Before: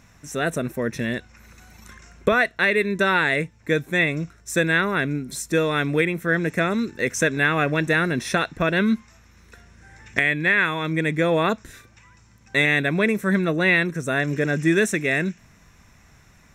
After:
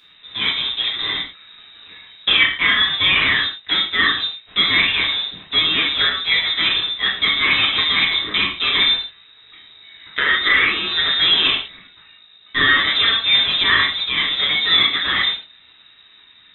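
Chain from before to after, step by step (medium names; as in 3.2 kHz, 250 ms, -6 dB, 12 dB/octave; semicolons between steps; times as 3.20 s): block-companded coder 3-bit; frequency inversion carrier 3.8 kHz; gated-style reverb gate 170 ms falling, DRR -5 dB; trim -2.5 dB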